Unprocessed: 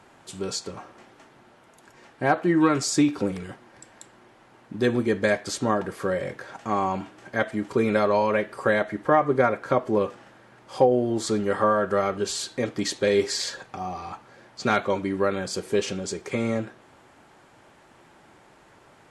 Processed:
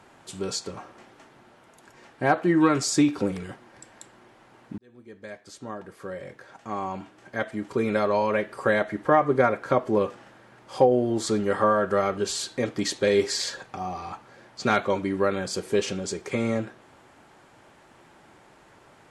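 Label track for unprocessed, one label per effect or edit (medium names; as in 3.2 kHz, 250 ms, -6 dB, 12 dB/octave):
4.780000	8.940000	fade in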